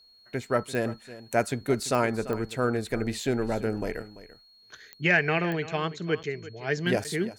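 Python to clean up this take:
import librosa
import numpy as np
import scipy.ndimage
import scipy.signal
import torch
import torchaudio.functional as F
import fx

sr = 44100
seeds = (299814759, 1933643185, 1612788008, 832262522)

y = fx.fix_declick_ar(x, sr, threshold=10.0)
y = fx.notch(y, sr, hz=4300.0, q=30.0)
y = fx.fix_interpolate(y, sr, at_s=(6.23, 7.04), length_ms=7.8)
y = fx.fix_echo_inverse(y, sr, delay_ms=340, level_db=-16.0)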